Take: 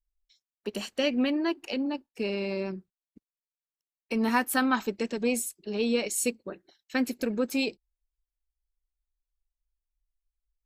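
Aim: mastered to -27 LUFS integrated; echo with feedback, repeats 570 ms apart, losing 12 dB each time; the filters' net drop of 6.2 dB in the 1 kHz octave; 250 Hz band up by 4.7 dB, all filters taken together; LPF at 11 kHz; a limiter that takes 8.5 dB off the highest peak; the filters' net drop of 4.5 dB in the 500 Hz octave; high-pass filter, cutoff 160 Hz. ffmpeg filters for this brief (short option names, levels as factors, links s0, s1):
-af "highpass=160,lowpass=11000,equalizer=f=250:t=o:g=7.5,equalizer=f=500:t=o:g=-6,equalizer=f=1000:t=o:g=-6.5,alimiter=limit=0.075:level=0:latency=1,aecho=1:1:570|1140|1710:0.251|0.0628|0.0157,volume=1.68"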